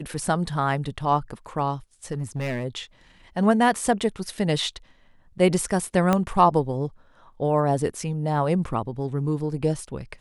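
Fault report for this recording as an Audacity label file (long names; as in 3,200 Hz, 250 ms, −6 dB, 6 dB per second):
2.110000	2.650000	clipping −23.5 dBFS
6.130000	6.130000	click −8 dBFS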